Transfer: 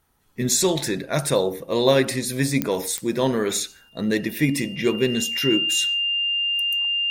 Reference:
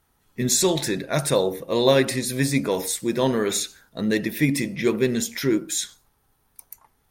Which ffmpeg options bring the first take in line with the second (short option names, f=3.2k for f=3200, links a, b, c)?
-af "adeclick=t=4,bandreject=f=2.8k:w=30"